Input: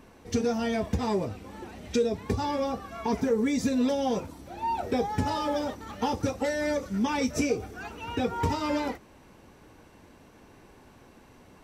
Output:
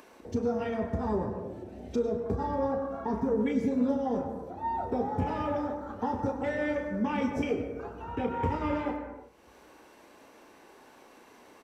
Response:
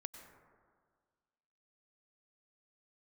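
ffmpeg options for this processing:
-filter_complex "[0:a]afwtdn=0.0141,asplit=2[a][b];[b]adelay=33,volume=-8dB[c];[a][c]amix=inputs=2:normalize=0,acrossover=split=280[d][e];[e]acompressor=mode=upward:threshold=-35dB:ratio=2.5[f];[d][f]amix=inputs=2:normalize=0,asplit=2[g][h];[h]adelay=90,highpass=300,lowpass=3.4k,asoftclip=type=hard:threshold=-23.5dB,volume=-18dB[i];[g][i]amix=inputs=2:normalize=0[j];[1:a]atrim=start_sample=2205,afade=t=out:st=0.42:d=0.01,atrim=end_sample=18963[k];[j][k]afir=irnorm=-1:irlink=0,volume=1.5dB"

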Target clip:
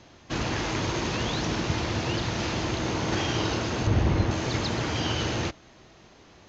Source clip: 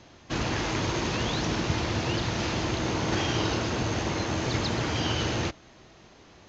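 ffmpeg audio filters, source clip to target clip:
-filter_complex "[0:a]asettb=1/sr,asplit=3[a][b][c];[a]atrim=end=3.874[d];[b]atrim=start=3.87:end=4.31,asetpts=PTS-STARTPTS,afade=t=in:d=0.004:c=qsin,afade=t=out:st=0.436:d=0.004:c=qsin,aemphasis=mode=reproduction:type=bsi[e];[c]atrim=start=4.306[f];[d][e]acrossfade=d=0.004:c1=hsin:c2=qsin[g];[g][f]acrossfade=d=0.004:c1=qsin:c2=hsin"

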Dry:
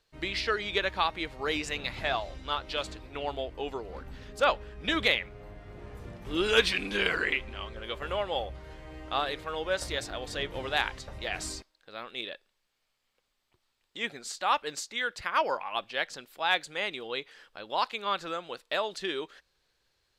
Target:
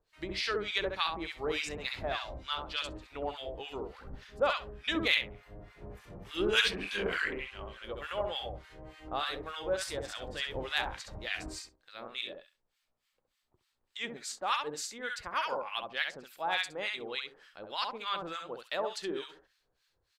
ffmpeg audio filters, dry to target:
-filter_complex "[0:a]aecho=1:1:67|134|201:0.562|0.112|0.0225,acrossover=split=1100[a][b];[a]aeval=exprs='val(0)*(1-1/2+1/2*cos(2*PI*3.4*n/s))':c=same[c];[b]aeval=exprs='val(0)*(1-1/2-1/2*cos(2*PI*3.4*n/s))':c=same[d];[c][d]amix=inputs=2:normalize=0"

